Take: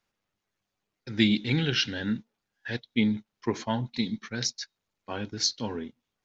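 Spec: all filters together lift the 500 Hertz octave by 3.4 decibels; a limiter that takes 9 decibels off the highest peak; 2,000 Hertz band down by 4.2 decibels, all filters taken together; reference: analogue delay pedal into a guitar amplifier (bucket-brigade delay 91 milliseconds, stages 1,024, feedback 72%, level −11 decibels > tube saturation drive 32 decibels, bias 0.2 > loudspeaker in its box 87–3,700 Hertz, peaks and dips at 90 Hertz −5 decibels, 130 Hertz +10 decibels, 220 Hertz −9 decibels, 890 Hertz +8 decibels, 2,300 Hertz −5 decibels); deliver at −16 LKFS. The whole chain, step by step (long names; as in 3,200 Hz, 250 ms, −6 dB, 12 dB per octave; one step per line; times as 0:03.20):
parametric band 500 Hz +4.5 dB
parametric band 2,000 Hz −3.5 dB
brickwall limiter −17 dBFS
bucket-brigade delay 91 ms, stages 1,024, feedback 72%, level −11 dB
tube saturation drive 32 dB, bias 0.2
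loudspeaker in its box 87–3,700 Hz, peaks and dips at 90 Hz −5 dB, 130 Hz +10 dB, 220 Hz −9 dB, 890 Hz +8 dB, 2,300 Hz −5 dB
level +22.5 dB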